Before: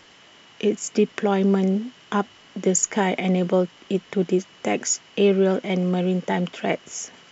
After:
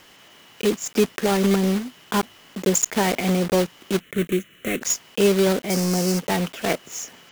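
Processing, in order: block-companded coder 3-bit; 4.00–4.82 s: static phaser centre 2.1 kHz, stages 4; 5.70–6.19 s: resonant high shelf 4.3 kHz +6.5 dB, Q 3

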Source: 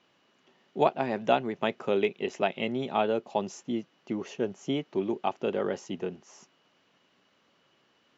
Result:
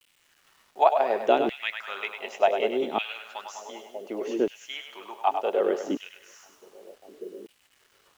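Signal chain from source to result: two-band feedback delay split 520 Hz, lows 593 ms, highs 100 ms, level -7 dB; LFO high-pass saw down 0.67 Hz 280–2800 Hz; bit crusher 10-bit

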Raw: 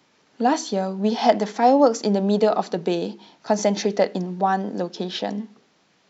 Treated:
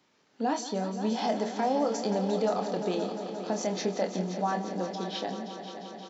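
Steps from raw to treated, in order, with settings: peak limiter -11.5 dBFS, peak gain reduction 7.5 dB; doubling 27 ms -7.5 dB; multi-head delay 175 ms, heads all three, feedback 74%, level -15 dB; trim -8 dB

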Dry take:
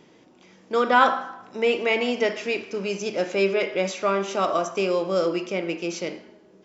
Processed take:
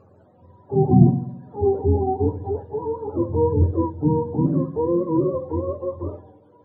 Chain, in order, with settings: spectrum inverted on a logarithmic axis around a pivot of 430 Hz; 3.29–3.73 s: resonant low shelf 230 Hz +7 dB, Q 1.5; trim +3.5 dB

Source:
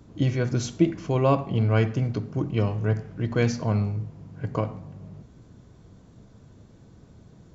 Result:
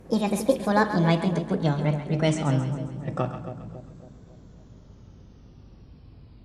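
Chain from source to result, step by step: gliding tape speed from 169% -> 65%; hum 50 Hz, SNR 26 dB; two-band feedback delay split 690 Hz, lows 276 ms, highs 134 ms, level -9.5 dB

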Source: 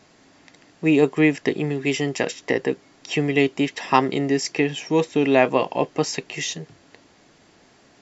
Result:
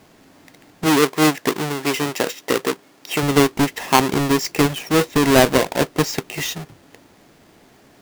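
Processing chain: square wave that keeps the level; 0.86–3.23 s: high-pass 270 Hz 6 dB/octave; trim -1 dB

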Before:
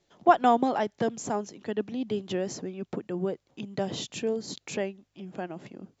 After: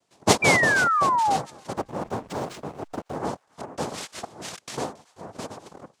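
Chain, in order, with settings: 4.24–4.74 s: compressor with a negative ratio -41 dBFS, ratio -1; noise-vocoded speech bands 2; 0.42–1.37 s: painted sound fall 750–2400 Hz -21 dBFS; 1.77–3.16 s: hysteresis with a dead band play -37.5 dBFS; feedback echo behind a high-pass 275 ms, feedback 31%, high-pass 1.6 kHz, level -22 dB

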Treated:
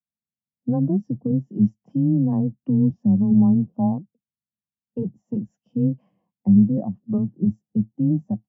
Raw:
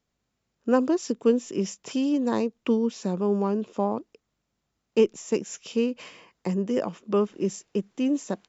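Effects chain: octave divider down 1 oct, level -1 dB; tilt EQ -3.5 dB/octave; peak limiter -9.5 dBFS, peak gain reduction 9 dB; cabinet simulation 120–6500 Hz, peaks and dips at 190 Hz +7 dB, 400 Hz -8 dB, 750 Hz +8 dB, 1.3 kHz -6 dB, 2.4 kHz -8 dB, 3.9 kHz -9 dB; frequency shift +14 Hz; spectral contrast expander 1.5:1

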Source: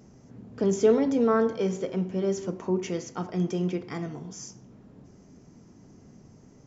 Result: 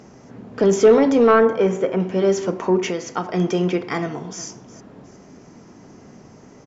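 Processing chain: 1.31–2.00 s: peaking EQ 4.5 kHz -13 dB 1 oct; 2.90–3.34 s: compression 5:1, threshold -31 dBFS, peak gain reduction 6 dB; overdrive pedal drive 14 dB, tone 2.7 kHz, clips at -10 dBFS; 4.01–4.44 s: echo throw 360 ms, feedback 35%, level -16.5 dB; trim +7 dB

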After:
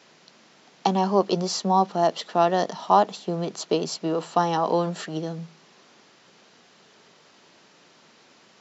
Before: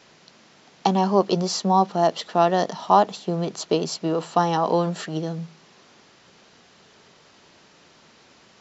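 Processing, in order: high-pass 150 Hz 12 dB/octave; trim -1.5 dB

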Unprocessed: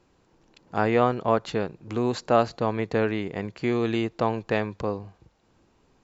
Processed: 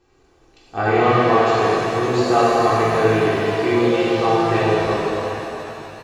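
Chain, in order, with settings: comb 2.6 ms, depth 61%; pitch-shifted reverb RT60 3.1 s, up +7 st, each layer -8 dB, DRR -8.5 dB; trim -2 dB

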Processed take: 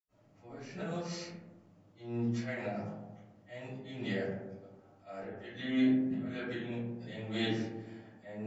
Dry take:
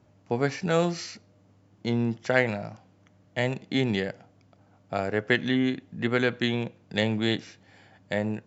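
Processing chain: 5.70–6.16 s: peaking EQ 620 Hz +12.5 dB 0.22 oct; slow attack 420 ms; reverberation RT60 1.2 s, pre-delay 75 ms, DRR -60 dB; trim +4.5 dB

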